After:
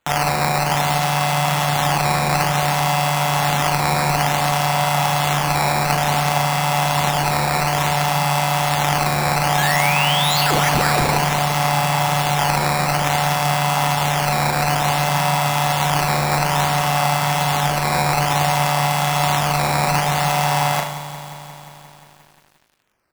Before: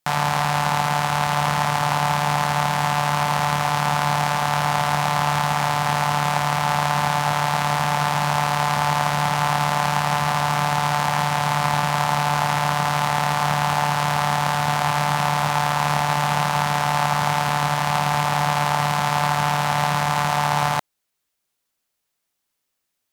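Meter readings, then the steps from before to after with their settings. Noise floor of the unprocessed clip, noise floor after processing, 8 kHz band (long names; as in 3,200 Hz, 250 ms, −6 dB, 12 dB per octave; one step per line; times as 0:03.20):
−78 dBFS, −46 dBFS, +5.5 dB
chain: high-pass filter 150 Hz 12 dB per octave
high-shelf EQ 9,400 Hz +5.5 dB
comb filter 7.2 ms, depth 57%
sound drawn into the spectrogram rise, 0:09.57–0:11.14, 1,600–11,000 Hz −24 dBFS
on a send: flutter between parallel walls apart 6.1 metres, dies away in 0.52 s
on the sum: sample-and-hold swept by an LFO 8×, swing 160% 0.57 Hz
feedback echo at a low word length 177 ms, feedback 80%, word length 7 bits, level −13 dB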